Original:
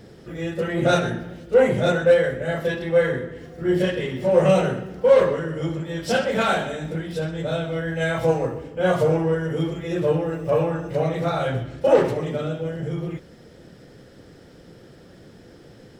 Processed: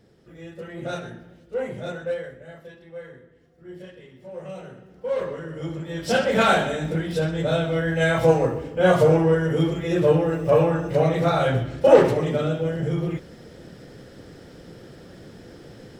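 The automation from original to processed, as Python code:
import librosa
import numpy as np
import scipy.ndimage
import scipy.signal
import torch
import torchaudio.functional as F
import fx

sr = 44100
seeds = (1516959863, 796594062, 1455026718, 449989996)

y = fx.gain(x, sr, db=fx.line((2.1, -12.0), (2.72, -20.0), (4.51, -20.0), (5.4, -7.5), (6.42, 3.0)))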